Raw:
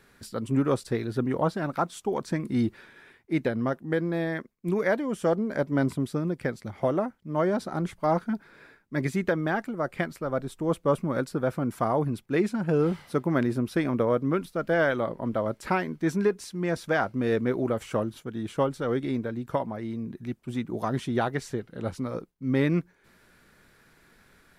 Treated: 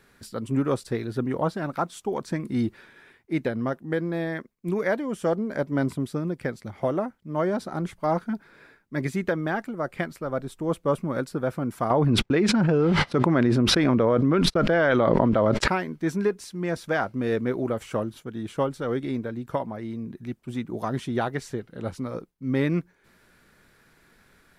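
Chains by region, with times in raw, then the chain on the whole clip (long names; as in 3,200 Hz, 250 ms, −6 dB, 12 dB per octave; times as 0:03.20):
0:11.90–0:15.68: low-pass filter 5,000 Hz + noise gate −48 dBFS, range −37 dB + envelope flattener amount 100%
whole clip: no processing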